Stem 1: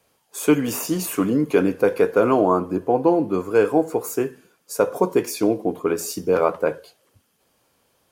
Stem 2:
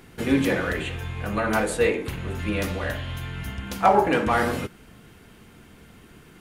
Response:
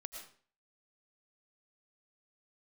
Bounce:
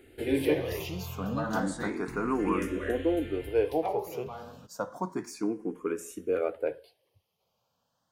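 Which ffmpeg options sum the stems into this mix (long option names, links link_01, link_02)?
-filter_complex "[0:a]highshelf=frequency=7800:gain=-7,volume=-8.5dB[link_01];[1:a]equalizer=frequency=360:width_type=o:width=0.87:gain=7.5,volume=-7dB,afade=type=out:start_time=3.29:duration=0.75:silence=0.237137[link_02];[link_01][link_02]amix=inputs=2:normalize=0,asplit=2[link_03][link_04];[link_04]afreqshift=0.31[link_05];[link_03][link_05]amix=inputs=2:normalize=1"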